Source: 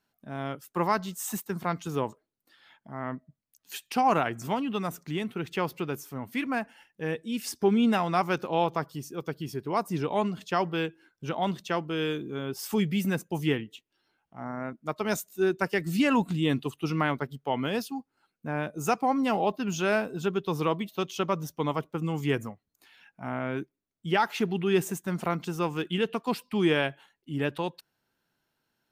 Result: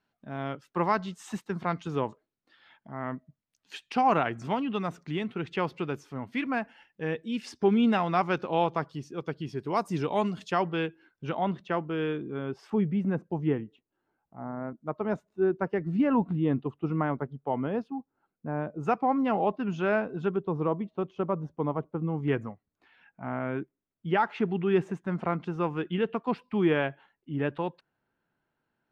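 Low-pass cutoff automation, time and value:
3.8 kHz
from 9.57 s 7.8 kHz
from 10.52 s 3.3 kHz
from 11.41 s 2 kHz
from 12.70 s 1.1 kHz
from 18.83 s 1.9 kHz
from 20.36 s 1 kHz
from 22.28 s 2 kHz

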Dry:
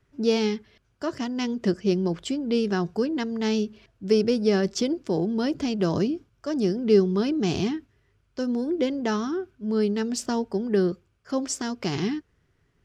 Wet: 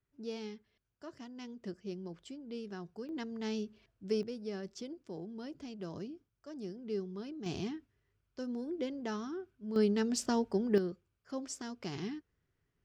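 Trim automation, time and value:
-19 dB
from 3.09 s -12.5 dB
from 4.23 s -19 dB
from 7.46 s -12.5 dB
from 9.76 s -5 dB
from 10.78 s -13 dB

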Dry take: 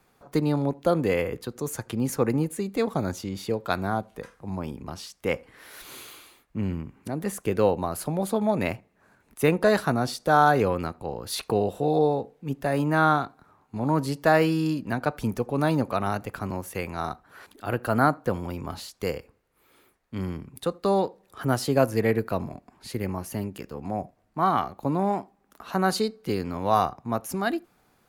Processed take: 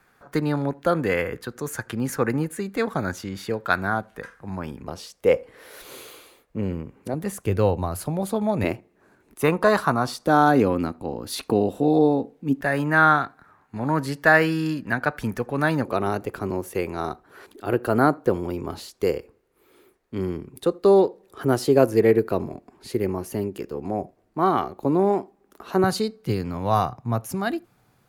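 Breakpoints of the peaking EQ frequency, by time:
peaking EQ +11 dB 0.71 oct
1.6 kHz
from 4.86 s 490 Hz
from 7.14 s 96 Hz
from 8.64 s 350 Hz
from 9.42 s 1.1 kHz
from 10.26 s 270 Hz
from 12.61 s 1.7 kHz
from 15.85 s 380 Hz
from 25.84 s 120 Hz

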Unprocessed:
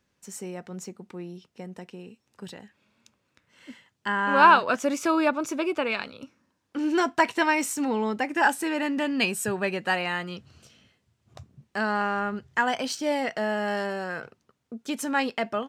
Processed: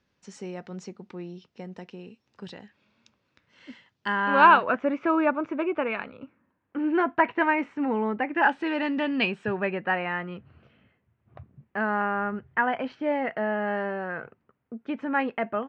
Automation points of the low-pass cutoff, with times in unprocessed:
low-pass 24 dB/octave
4.10 s 5.5 kHz
4.73 s 2.3 kHz
8.17 s 2.3 kHz
8.87 s 4.2 kHz
9.83 s 2.3 kHz

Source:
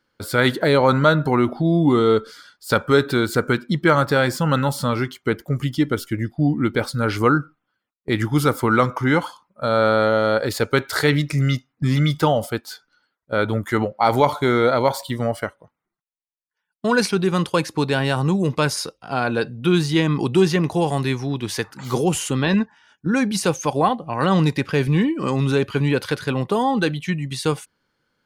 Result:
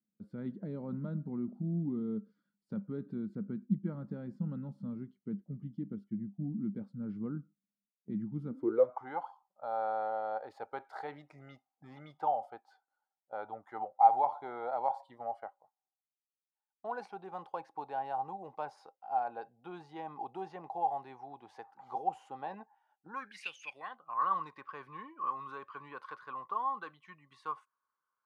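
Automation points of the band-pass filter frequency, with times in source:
band-pass filter, Q 14
8.48 s 200 Hz
8.97 s 790 Hz
23.07 s 790 Hz
23.53 s 3.2 kHz
24.15 s 1.1 kHz

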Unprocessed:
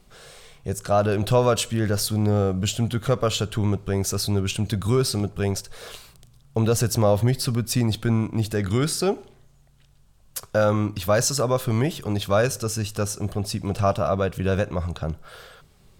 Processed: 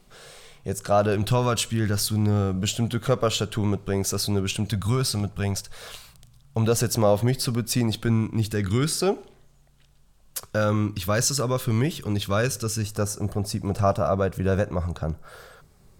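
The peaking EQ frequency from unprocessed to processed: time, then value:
peaking EQ -8 dB 0.9 oct
62 Hz
from 1.15 s 550 Hz
from 2.55 s 66 Hz
from 4.69 s 370 Hz
from 6.67 s 77 Hz
from 8.08 s 640 Hz
from 8.92 s 92 Hz
from 10.44 s 690 Hz
from 12.83 s 3.1 kHz

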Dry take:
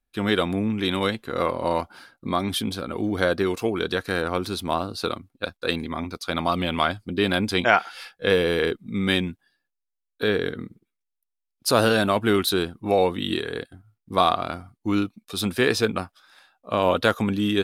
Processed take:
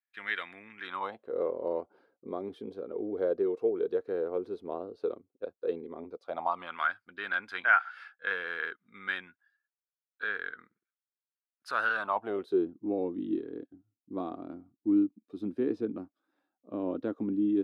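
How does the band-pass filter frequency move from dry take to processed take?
band-pass filter, Q 4.6
0.75 s 1.9 kHz
1.35 s 440 Hz
6.10 s 440 Hz
6.79 s 1.5 kHz
11.90 s 1.5 kHz
12.65 s 300 Hz

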